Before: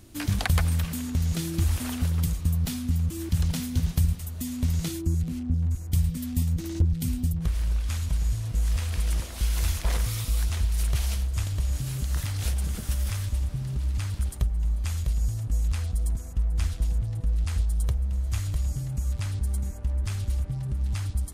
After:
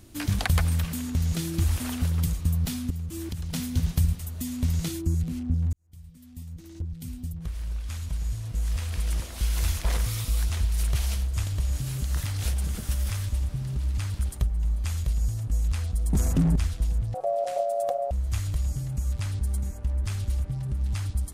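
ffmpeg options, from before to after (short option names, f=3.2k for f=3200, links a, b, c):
-filter_complex "[0:a]asettb=1/sr,asplit=3[a][b][c];[a]atrim=end=2.904[d];[b]atrim=start=2.9:end=3.53,asetpts=PTS-STARTPTS,afade=t=in:d=0.004:c=qsin,afade=t=out:st=0.626:d=0.004:c=qsin,acompressor=threshold=-29dB:ratio=6:attack=3.2:release=140:knee=1:detection=peak[e];[c]atrim=start=3.526[f];[d][e]acrossfade=d=0.004:c1=hsin:c2=qsin[g];[g][f]acrossfade=d=0.004:c1=qsin:c2=hsin,asettb=1/sr,asplit=3[h][i][j];[h]atrim=end=16.134[k];[i]atrim=start=16.13:end=16.56,asetpts=PTS-STARTPTS,afade=t=in:d=0.004:c=qsin,afade=t=out:st=0.426:d=0.004:c=qsin,aeval=exprs='0.15*sin(PI/2*3.55*val(0)/0.15)':c=same[l];[j]atrim=start=16.556[m];[k][l]acrossfade=d=0.004:c1=hsin:c2=qsin[n];[n][m]acrossfade=d=0.004:c1=qsin:c2=hsin,asettb=1/sr,asplit=3[o][p][q];[o]atrim=end=17.144[r];[p]atrim=start=17.14:end=18.11,asetpts=PTS-STARTPTS,afade=t=in:d=0.004:c=qsin,afade=t=out:st=0.966:d=0.004:c=qsin,aeval=exprs='val(0)*sin(2*PI*630*n/s)':c=same[s];[q]atrim=start=18.106[t];[r][s]acrossfade=d=0.004:c1=hsin:c2=qsin[u];[u][t]acrossfade=d=0.004:c1=qsin:c2=hsin,asplit=2[v][w];[v]atrim=end=5.73,asetpts=PTS-STARTPTS,afade=t=out:st=5.726:d=0.004:c=hsin[x];[w]atrim=start=5.73,asetpts=PTS-STARTPTS,afade=t=in:d=3.92[y];[x][y]concat=n=2:v=0:a=1"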